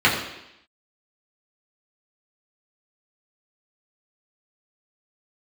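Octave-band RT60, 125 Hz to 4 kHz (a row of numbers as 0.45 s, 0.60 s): 0.70 s, 0.85 s, 0.80 s, 0.85 s, 0.90 s, 0.90 s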